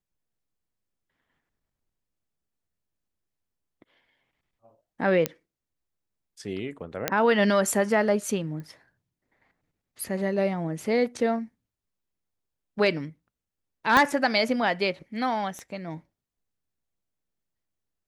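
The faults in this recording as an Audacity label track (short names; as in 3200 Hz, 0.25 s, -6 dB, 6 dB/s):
5.260000	5.260000	pop -8 dBFS
7.080000	7.080000	pop -7 dBFS
8.600000	8.600000	pop -29 dBFS
13.970000	13.970000	pop -7 dBFS
15.590000	15.590000	pop -26 dBFS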